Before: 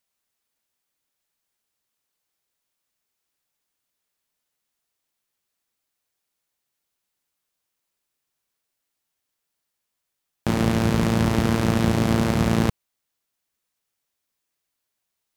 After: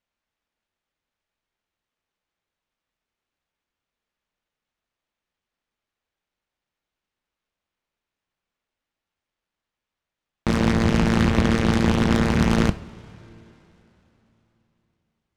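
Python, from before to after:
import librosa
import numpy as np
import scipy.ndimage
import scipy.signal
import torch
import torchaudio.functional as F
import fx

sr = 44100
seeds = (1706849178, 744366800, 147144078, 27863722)

y = fx.self_delay(x, sr, depth_ms=0.82)
y = scipy.signal.sosfilt(scipy.signal.butter(4, 3900.0, 'lowpass', fs=sr, output='sos'), y)
y = fx.low_shelf(y, sr, hz=92.0, db=8.0)
y = fx.rev_double_slope(y, sr, seeds[0], early_s=0.36, late_s=3.7, knee_db=-18, drr_db=10.5)
y = fx.noise_mod_delay(y, sr, seeds[1], noise_hz=2300.0, depth_ms=0.034)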